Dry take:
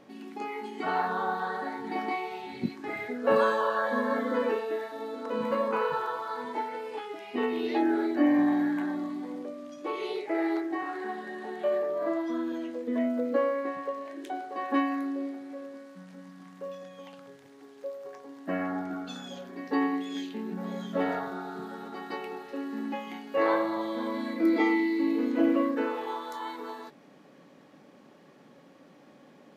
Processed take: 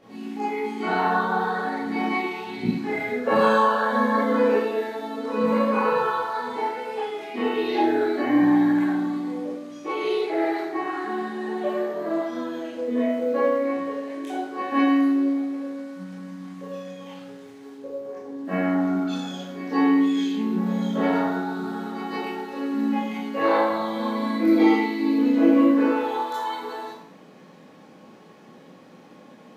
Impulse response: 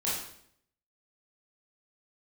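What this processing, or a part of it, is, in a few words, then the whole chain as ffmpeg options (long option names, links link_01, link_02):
bathroom: -filter_complex "[0:a]asettb=1/sr,asplit=3[link_01][link_02][link_03];[link_01]atrim=end=17.744[link_04];[link_02]atrim=start=17.74:end=18.45,asetpts=PTS-STARTPTS,afade=type=in:duration=0.004:curve=qsin,afade=type=out:start_time=0.706:duration=0.004:curve=qsin,tiltshelf=frequency=670:gain=6.5[link_05];[link_03]atrim=start=18.446[link_06];[link_04][link_05]acrossfade=duration=0.004:curve1=hsin:curve2=qsin[link_07];[link_07][link_06]acrossfade=duration=0.004:curve1=qsin:curve2=hsin[link_08];[1:a]atrim=start_sample=2205[link_09];[link_08][link_09]afir=irnorm=-1:irlink=0"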